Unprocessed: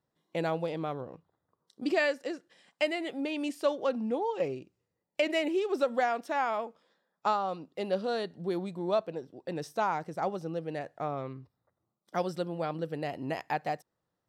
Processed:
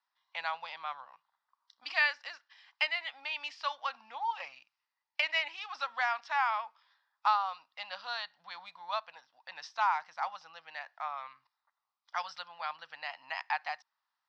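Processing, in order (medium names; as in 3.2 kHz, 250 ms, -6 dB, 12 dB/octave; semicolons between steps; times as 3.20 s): elliptic band-pass 920–5200 Hz, stop band 40 dB; trim +4 dB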